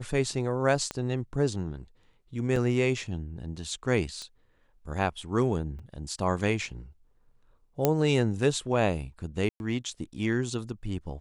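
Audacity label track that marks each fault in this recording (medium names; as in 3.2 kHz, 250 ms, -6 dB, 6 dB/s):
0.910000	0.910000	pop -18 dBFS
2.560000	2.560000	dropout 2.5 ms
4.220000	4.220000	pop -26 dBFS
5.790000	5.800000	dropout 5.2 ms
7.850000	7.850000	pop -8 dBFS
9.490000	9.600000	dropout 111 ms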